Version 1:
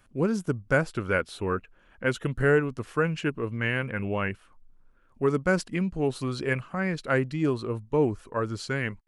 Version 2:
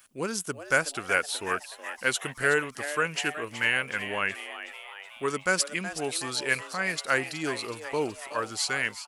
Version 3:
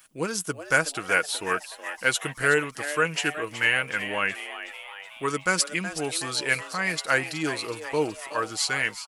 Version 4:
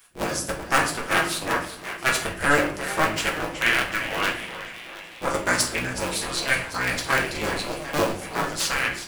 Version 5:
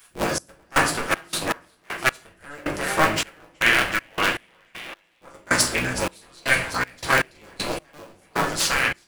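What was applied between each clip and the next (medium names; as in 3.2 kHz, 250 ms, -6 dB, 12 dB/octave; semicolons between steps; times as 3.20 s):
tilt EQ +4.5 dB/octave; on a send: frequency-shifting echo 372 ms, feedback 62%, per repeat +150 Hz, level -12 dB
comb 6.3 ms, depth 37%; trim +2 dB
cycle switcher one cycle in 3, inverted; simulated room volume 67 m³, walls mixed, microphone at 0.69 m; trim -1 dB
trance gate "xx..xx.x..x...x" 79 bpm -24 dB; trim +3 dB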